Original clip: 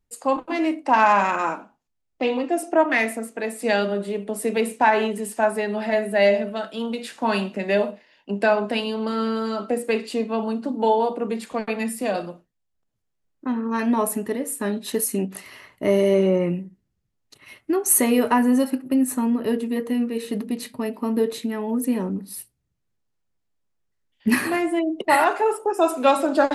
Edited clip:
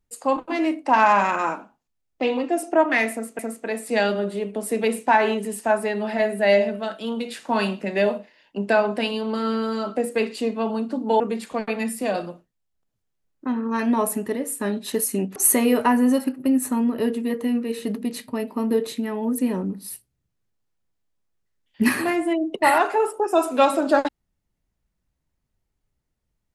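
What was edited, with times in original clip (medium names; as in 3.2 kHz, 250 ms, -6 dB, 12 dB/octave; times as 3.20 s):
3.12–3.39 s: loop, 2 plays
10.93–11.20 s: delete
15.36–17.82 s: delete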